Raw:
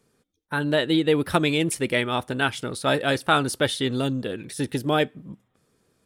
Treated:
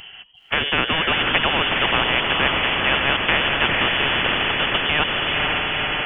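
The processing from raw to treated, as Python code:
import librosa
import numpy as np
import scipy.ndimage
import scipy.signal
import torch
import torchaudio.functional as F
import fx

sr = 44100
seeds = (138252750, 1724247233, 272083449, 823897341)

y = fx.freq_invert(x, sr, carrier_hz=3200)
y = fx.echo_diffused(y, sr, ms=481, feedback_pct=47, wet_db=-7)
y = fx.spectral_comp(y, sr, ratio=4.0)
y = y * 10.0 ** (2.5 / 20.0)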